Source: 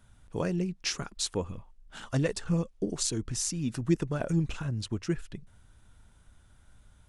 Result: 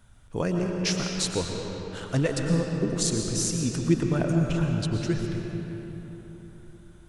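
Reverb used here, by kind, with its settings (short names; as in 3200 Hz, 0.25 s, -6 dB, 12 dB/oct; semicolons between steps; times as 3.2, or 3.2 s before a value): digital reverb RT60 4 s, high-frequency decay 0.6×, pre-delay 75 ms, DRR 1.5 dB; gain +3 dB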